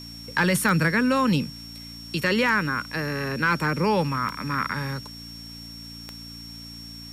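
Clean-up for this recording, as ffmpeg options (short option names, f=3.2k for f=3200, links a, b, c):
-af "adeclick=t=4,bandreject=f=57.3:t=h:w=4,bandreject=f=114.6:t=h:w=4,bandreject=f=171.9:t=h:w=4,bandreject=f=229.2:t=h:w=4,bandreject=f=286.5:t=h:w=4,bandreject=f=5.5k:w=30,afwtdn=0.0028"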